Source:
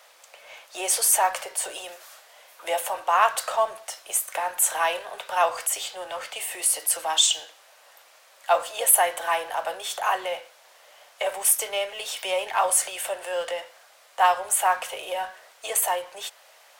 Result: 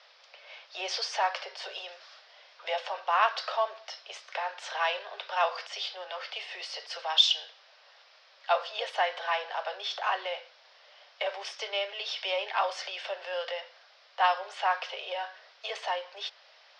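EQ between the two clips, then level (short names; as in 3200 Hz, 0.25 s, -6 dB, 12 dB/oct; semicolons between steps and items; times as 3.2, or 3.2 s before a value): Chebyshev band-pass 390–5300 Hz, order 5; high shelf 2500 Hz +8.5 dB; -6.0 dB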